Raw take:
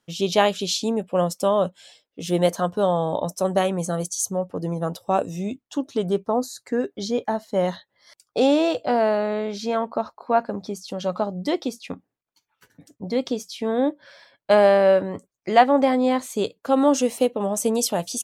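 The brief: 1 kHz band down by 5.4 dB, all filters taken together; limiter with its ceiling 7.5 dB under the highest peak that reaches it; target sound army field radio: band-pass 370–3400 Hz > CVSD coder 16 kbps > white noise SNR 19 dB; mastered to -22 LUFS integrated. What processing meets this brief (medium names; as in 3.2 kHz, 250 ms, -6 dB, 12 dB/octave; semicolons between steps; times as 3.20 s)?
peaking EQ 1 kHz -8 dB; peak limiter -14 dBFS; band-pass 370–3400 Hz; CVSD coder 16 kbps; white noise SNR 19 dB; trim +7.5 dB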